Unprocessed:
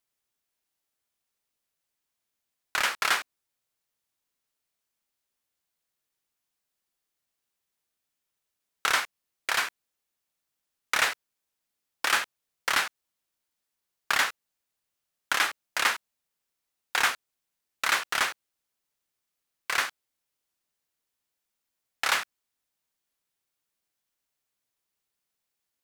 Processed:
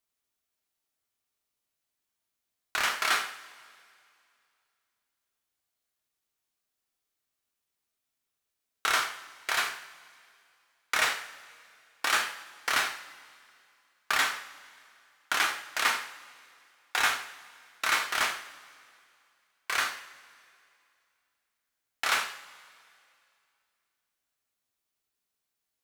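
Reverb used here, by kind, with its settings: two-slope reverb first 0.55 s, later 2.5 s, from -18 dB, DRR 2.5 dB; gain -3 dB

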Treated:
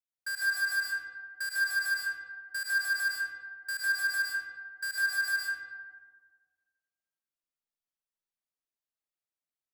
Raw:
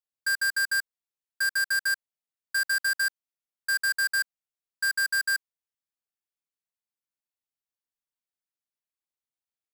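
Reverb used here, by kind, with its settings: digital reverb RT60 1.6 s, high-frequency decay 0.5×, pre-delay 70 ms, DRR -4.5 dB; gain -9 dB

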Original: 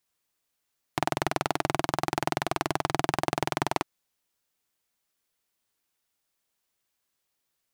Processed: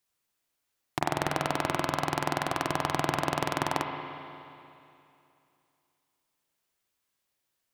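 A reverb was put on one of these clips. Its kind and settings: spring tank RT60 2.7 s, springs 34/59 ms, chirp 75 ms, DRR 3.5 dB; gain -1.5 dB

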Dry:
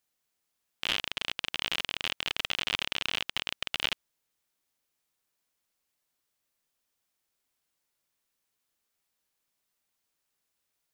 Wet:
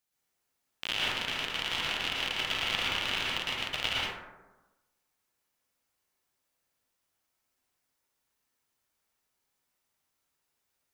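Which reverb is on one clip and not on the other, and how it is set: plate-style reverb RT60 1.1 s, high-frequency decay 0.35×, pre-delay 0.1 s, DRR -6 dB; gain -4 dB

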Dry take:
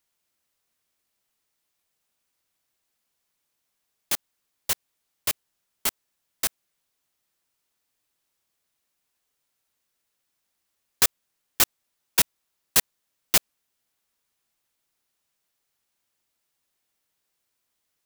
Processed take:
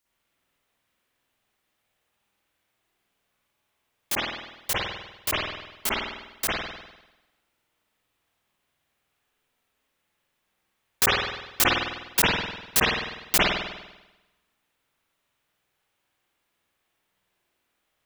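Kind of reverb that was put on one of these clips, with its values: spring tank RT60 1 s, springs 49 ms, chirp 65 ms, DRR -10 dB; gain -2.5 dB

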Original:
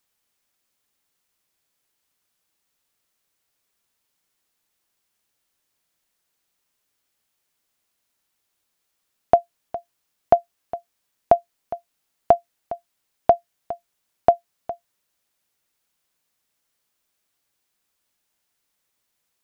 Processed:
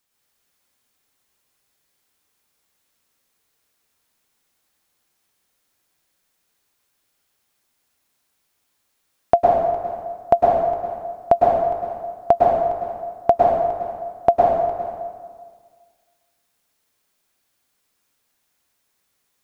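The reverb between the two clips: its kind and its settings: plate-style reverb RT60 1.7 s, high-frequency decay 0.65×, pre-delay 95 ms, DRR -4.5 dB

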